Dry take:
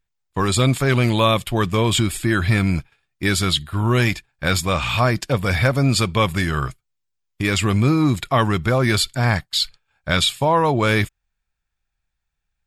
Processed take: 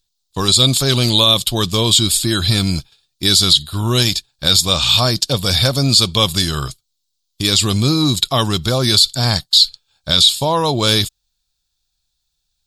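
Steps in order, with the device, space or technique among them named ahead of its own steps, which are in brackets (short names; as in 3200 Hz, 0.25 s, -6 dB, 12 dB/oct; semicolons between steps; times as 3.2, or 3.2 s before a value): over-bright horn tweeter (resonant high shelf 2900 Hz +11.5 dB, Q 3; limiter -2 dBFS, peak gain reduction 11 dB); gain +1 dB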